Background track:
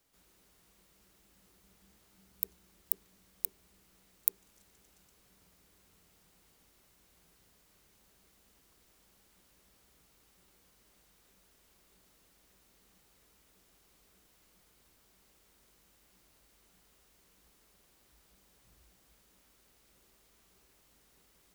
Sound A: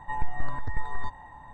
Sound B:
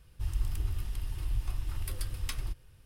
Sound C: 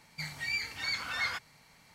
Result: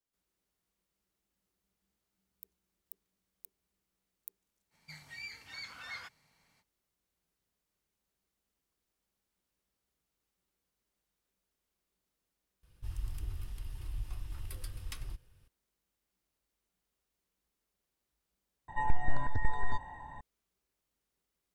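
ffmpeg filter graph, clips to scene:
ffmpeg -i bed.wav -i cue0.wav -i cue1.wav -i cue2.wav -filter_complex "[0:a]volume=-19dB[link_01];[1:a]asuperstop=centerf=1200:order=4:qfactor=4.1[link_02];[link_01]asplit=2[link_03][link_04];[link_03]atrim=end=18.684[link_05];[link_02]atrim=end=1.53,asetpts=PTS-STARTPTS,volume=-0.5dB[link_06];[link_04]atrim=start=20.206[link_07];[3:a]atrim=end=1.94,asetpts=PTS-STARTPTS,volume=-11.5dB,afade=type=in:duration=0.05,afade=type=out:start_time=1.89:duration=0.05,adelay=4700[link_08];[2:a]atrim=end=2.85,asetpts=PTS-STARTPTS,volume=-7dB,afade=type=in:duration=0.004:curve=hsin,afade=type=out:start_time=2.846:duration=0.004:curve=hsin,adelay=12630[link_09];[link_05][link_06]acrossfade=duration=0.004:curve1=hsin:curve2=hsin[link_10];[link_10][link_07]acrossfade=duration=0.004:curve1=hsin:curve2=hsin[link_11];[link_11][link_08][link_09]amix=inputs=3:normalize=0" out.wav

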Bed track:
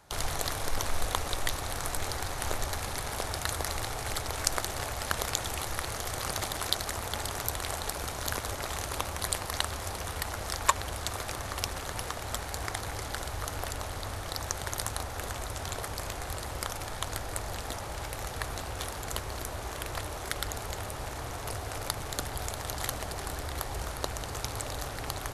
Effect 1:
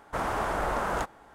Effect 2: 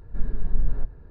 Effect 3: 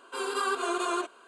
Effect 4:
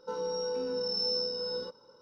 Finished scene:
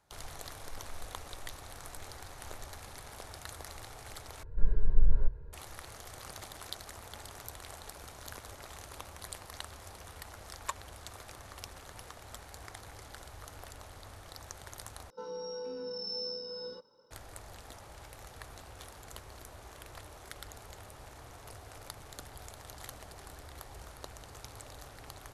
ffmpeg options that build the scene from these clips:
ffmpeg -i bed.wav -i cue0.wav -i cue1.wav -i cue2.wav -i cue3.wav -filter_complex "[0:a]volume=-13dB[link_01];[2:a]aecho=1:1:2:0.65[link_02];[link_01]asplit=3[link_03][link_04][link_05];[link_03]atrim=end=4.434[link_06];[link_02]atrim=end=1.1,asetpts=PTS-STARTPTS,volume=-5dB[link_07];[link_04]atrim=start=5.526:end=15.104[link_08];[4:a]atrim=end=2.01,asetpts=PTS-STARTPTS,volume=-7dB[link_09];[link_05]atrim=start=17.106[link_10];[link_06][link_07]acrossfade=duration=0.004:curve1=hsin:curve2=hsin[link_11];[link_11][link_08]acrossfade=duration=0.004:curve1=hsin:curve2=hsin[link_12];[link_12][link_09]acrossfade=duration=0.004:curve1=hsin:curve2=hsin[link_13];[link_13][link_10]acrossfade=duration=0.004:curve1=hsin:curve2=hsin" out.wav

